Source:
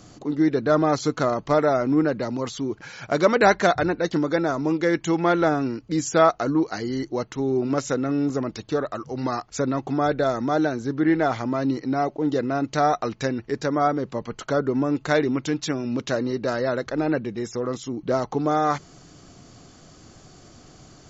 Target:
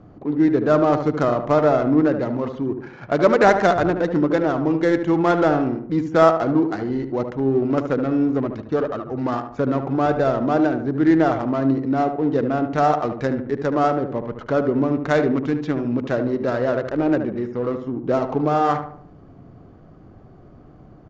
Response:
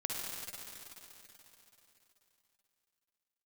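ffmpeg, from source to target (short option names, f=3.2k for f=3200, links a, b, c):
-filter_complex "[0:a]highshelf=f=2.6k:g=-8,adynamicsmooth=sensitivity=4:basefreq=1.3k,asplit=2[a][b];[b]adelay=74,lowpass=f=1.6k:p=1,volume=-7dB,asplit=2[c][d];[d]adelay=74,lowpass=f=1.6k:p=1,volume=0.46,asplit=2[e][f];[f]adelay=74,lowpass=f=1.6k:p=1,volume=0.46,asplit=2[g][h];[h]adelay=74,lowpass=f=1.6k:p=1,volume=0.46,asplit=2[i][j];[j]adelay=74,lowpass=f=1.6k:p=1,volume=0.46[k];[c][e][g][i][k]amix=inputs=5:normalize=0[l];[a][l]amix=inputs=2:normalize=0,aresample=16000,aresample=44100,volume=3dB"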